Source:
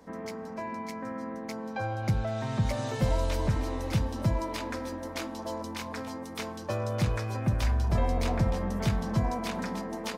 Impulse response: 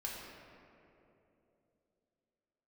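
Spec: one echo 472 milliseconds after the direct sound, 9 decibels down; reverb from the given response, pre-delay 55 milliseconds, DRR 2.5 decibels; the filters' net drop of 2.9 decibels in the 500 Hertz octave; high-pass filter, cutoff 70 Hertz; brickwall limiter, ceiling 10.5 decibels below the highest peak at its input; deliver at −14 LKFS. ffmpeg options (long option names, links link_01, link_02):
-filter_complex "[0:a]highpass=70,equalizer=frequency=500:width_type=o:gain=-3.5,alimiter=level_in=2dB:limit=-24dB:level=0:latency=1,volume=-2dB,aecho=1:1:472:0.355,asplit=2[link_01][link_02];[1:a]atrim=start_sample=2205,adelay=55[link_03];[link_02][link_03]afir=irnorm=-1:irlink=0,volume=-3dB[link_04];[link_01][link_04]amix=inputs=2:normalize=0,volume=19dB"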